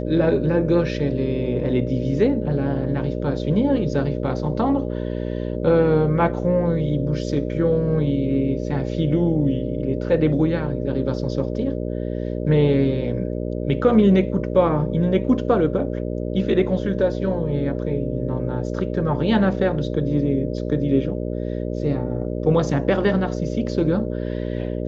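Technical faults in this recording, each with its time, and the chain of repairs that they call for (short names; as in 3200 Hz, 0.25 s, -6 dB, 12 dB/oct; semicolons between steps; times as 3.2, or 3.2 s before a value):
buzz 60 Hz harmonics 10 -26 dBFS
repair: de-hum 60 Hz, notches 10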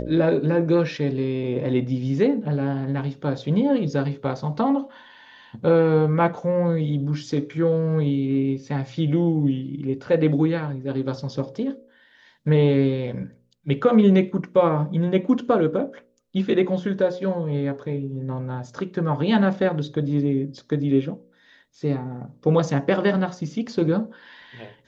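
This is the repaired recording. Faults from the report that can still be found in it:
none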